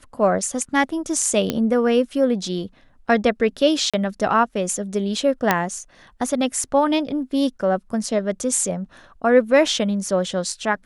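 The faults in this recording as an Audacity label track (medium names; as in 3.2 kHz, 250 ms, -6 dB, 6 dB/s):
1.500000	1.500000	pop -7 dBFS
3.900000	3.940000	dropout 36 ms
5.510000	5.510000	pop -2 dBFS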